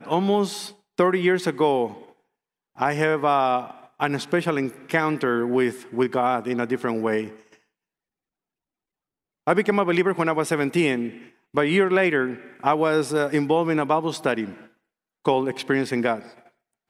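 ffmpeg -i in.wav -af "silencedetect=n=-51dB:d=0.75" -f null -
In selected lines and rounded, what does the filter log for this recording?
silence_start: 7.57
silence_end: 9.47 | silence_duration: 1.90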